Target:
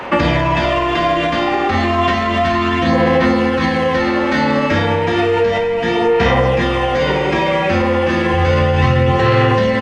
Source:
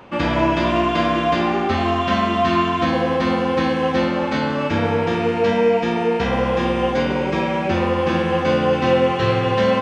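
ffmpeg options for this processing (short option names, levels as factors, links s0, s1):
-filter_complex "[0:a]asettb=1/sr,asplit=3[s0][s1][s2];[s0]atrim=end=8.334[s3];[s1]atrim=start=8.33:end=9.12,asetpts=PTS-STARTPTS,afade=t=in:d=0.004:c=qsin,afade=t=out:st=0.786:d=0.004:c=qsin,lowshelf=f=150:t=q:w=1.5:g=9[s4];[s2]atrim=start=9.116[s5];[s3][s4]acrossfade=d=0.004:c1=hsin:c2=qsin[s6];[s6][s5]acrossfade=d=0.004:c1=qsin:c2=hsin,aecho=1:1:32|54:0.335|0.473,acrossover=split=310[s7][s8];[s8]acontrast=79[s9];[s7][s9]amix=inputs=2:normalize=0,alimiter=limit=0.447:level=0:latency=1:release=54,equalizer=f=1900:t=o:w=0.26:g=7,asoftclip=type=hard:threshold=0.501,acrossover=split=170[s10][s11];[s11]acompressor=threshold=0.0891:ratio=6[s12];[s10][s12]amix=inputs=2:normalize=0,aphaser=in_gain=1:out_gain=1:delay=3.7:decay=0.31:speed=0.32:type=sinusoidal,volume=2.11"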